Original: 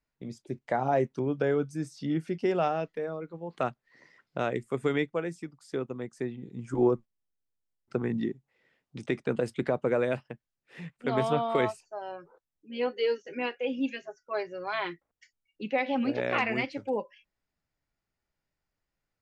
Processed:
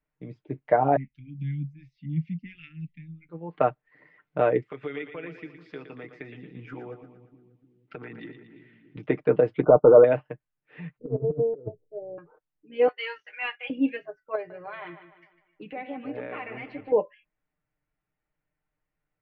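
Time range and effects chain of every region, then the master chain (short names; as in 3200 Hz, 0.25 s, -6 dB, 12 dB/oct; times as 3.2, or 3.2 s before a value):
0.96–3.29 Chebyshev band-stop 230–2100 Hz, order 4 + low shelf 120 Hz +10.5 dB + photocell phaser 1.4 Hz
4.62–8.97 weighting filter D + compressor 5:1, threshold -36 dBFS + split-band echo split 330 Hz, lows 0.301 s, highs 0.116 s, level -9 dB
9.63–10.04 sample leveller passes 2 + brick-wall FIR low-pass 1500 Hz
10.98–12.18 steep low-pass 540 Hz 48 dB/oct + comb 2.2 ms, depth 36% + negative-ratio compressor -34 dBFS, ratio -0.5
12.88–13.7 HPF 930 Hz 24 dB/oct + high shelf 4400 Hz +8 dB + sample leveller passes 1
14.35–16.92 compressor 3:1, threshold -37 dBFS + analogue delay 0.15 s, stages 4096, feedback 43%, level -11 dB
whole clip: LPF 2700 Hz 24 dB/oct; comb 6.6 ms, depth 62%; dynamic EQ 500 Hz, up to +8 dB, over -38 dBFS, Q 0.73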